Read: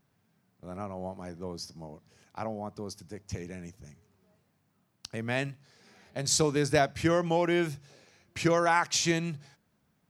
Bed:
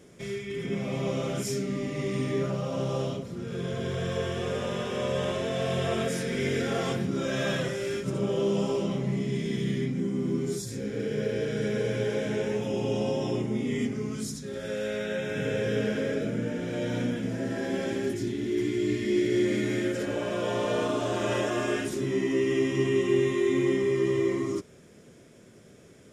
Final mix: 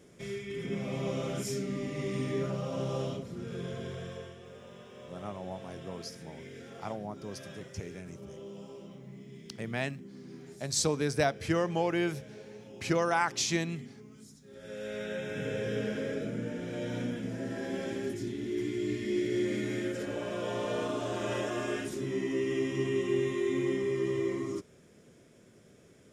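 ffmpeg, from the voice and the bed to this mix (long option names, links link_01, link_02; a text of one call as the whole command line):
ffmpeg -i stem1.wav -i stem2.wav -filter_complex "[0:a]adelay=4450,volume=-3dB[link_01];[1:a]volume=9.5dB,afade=type=out:start_time=3.44:duration=0.94:silence=0.177828,afade=type=in:start_time=14.43:duration=0.6:silence=0.211349[link_02];[link_01][link_02]amix=inputs=2:normalize=0" out.wav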